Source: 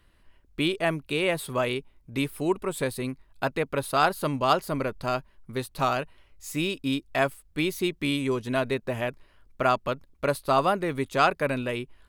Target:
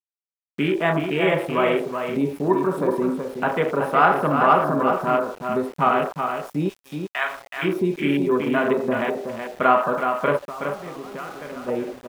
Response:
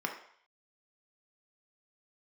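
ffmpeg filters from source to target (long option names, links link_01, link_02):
-filter_complex "[1:a]atrim=start_sample=2205[link_01];[0:a][link_01]afir=irnorm=-1:irlink=0,afwtdn=0.0398,highshelf=frequency=7200:gain=4.5,asplit=2[link_02][link_03];[link_03]alimiter=level_in=3dB:limit=-24dB:level=0:latency=1:release=169,volume=-3dB,volume=0dB[link_04];[link_02][link_04]amix=inputs=2:normalize=0,asplit=3[link_05][link_06][link_07];[link_05]afade=type=out:start_time=6.68:duration=0.02[link_08];[link_06]highpass=1200,afade=type=in:start_time=6.68:duration=0.02,afade=type=out:start_time=7.62:duration=0.02[link_09];[link_07]afade=type=in:start_time=7.62:duration=0.02[link_10];[link_08][link_09][link_10]amix=inputs=3:normalize=0,asplit=3[link_11][link_12][link_13];[link_11]afade=type=out:start_time=10.36:duration=0.02[link_14];[link_12]acompressor=threshold=-31dB:ratio=16,afade=type=in:start_time=10.36:duration=0.02,afade=type=out:start_time=11.67:duration=0.02[link_15];[link_13]afade=type=in:start_time=11.67:duration=0.02[link_16];[link_14][link_15][link_16]amix=inputs=3:normalize=0,aecho=1:1:374:0.473,aeval=exprs='val(0)*gte(abs(val(0)),0.01)':channel_layout=same"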